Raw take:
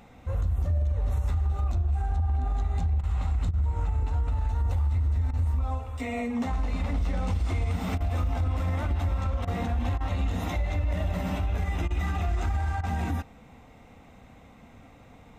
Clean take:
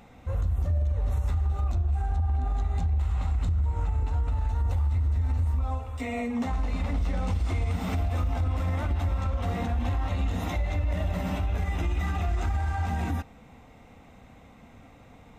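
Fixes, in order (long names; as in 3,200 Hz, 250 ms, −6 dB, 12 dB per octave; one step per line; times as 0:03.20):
repair the gap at 0:03.01/0:03.51/0:05.31/0:07.98/0:09.45/0:09.98/0:11.88/0:12.81, 23 ms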